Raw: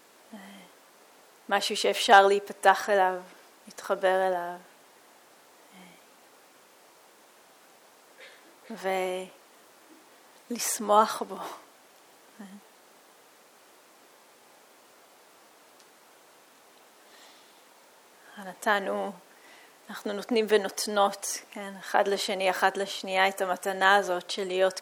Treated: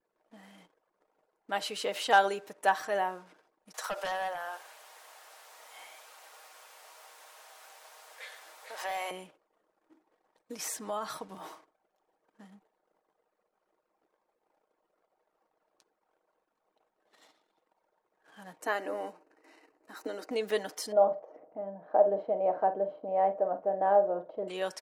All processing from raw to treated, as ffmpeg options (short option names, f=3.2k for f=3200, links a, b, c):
-filter_complex "[0:a]asettb=1/sr,asplit=3[a][b][c];[a]atrim=end=3.744[d];[b]atrim=start=3.74:end=9.11,asetpts=PTS-STARTPTS,afade=t=in:d=0.004:c=qsin,afade=t=out:st=5.366:d=0.004:c=qsin,highpass=f=580:w=0.5412,highpass=f=580:w=1.3066,aeval=exprs='0.158*sin(PI/2*2.24*val(0)/0.158)':c=same,acompressor=threshold=-24dB:ratio=6:attack=3.2:release=140:knee=1:detection=peak[e];[c]atrim=start=9.106[f];[d][e]acrossfade=d=0.004:c1=hsin:c2=qsin[g];[g][f]acrossfade=d=0.004:c1=qsin:c2=hsin,asettb=1/sr,asplit=3[h][i][j];[h]atrim=end=10.524[k];[i]atrim=start=10.52:end=11.38,asetpts=PTS-STARTPTS,afade=t=in:d=0.004:c=qsin,afade=t=out:st=0.856:d=0.004:c=qsin,asubboost=boost=9.5:cutoff=190,acompressor=threshold=-24dB:ratio=3:attack=3.2:release=140:knee=1:detection=peak[l];[j]atrim=start=11.376[m];[k][l]acrossfade=d=0.004:c1=hsin:c2=qsin[n];[n][m]acrossfade=d=0.004:c1=qsin:c2=hsin,asettb=1/sr,asplit=3[o][p][q];[o]atrim=end=18.614[r];[p]atrim=start=18.61:end=20.31,asetpts=PTS-STARTPTS,afade=t=in:d=0.004:c=qsin,afade=t=out:st=1.696:d=0.004:c=qsin,asuperstop=centerf=3400:order=4:qfactor=5.2,lowshelf=f=210:t=q:w=3:g=-11.5[s];[q]atrim=start=20.306[t];[r][s]acrossfade=d=0.004:c1=hsin:c2=qsin[u];[u][t]acrossfade=d=0.004:c1=qsin:c2=hsin,asettb=1/sr,asplit=3[v][w][x];[v]atrim=end=20.924[y];[w]atrim=start=20.92:end=24.48,asetpts=PTS-STARTPTS,afade=t=in:d=0.004:c=qsin,afade=t=out:st=3.556:d=0.004:c=qsin,lowpass=f=630:t=q:w=3.5,asplit=2[z][aa];[aa]adelay=46,volume=-11dB[ab];[z][ab]amix=inputs=2:normalize=0,atrim=end_sample=156996[ac];[x]atrim=start=24.476[ad];[y][ac]acrossfade=d=0.004:c1=hsin:c2=qsin[ae];[ae][ad]acrossfade=d=0.004:c1=qsin:c2=hsin,anlmdn=0.00251,aecho=1:1:6.4:0.39,volume=-8dB"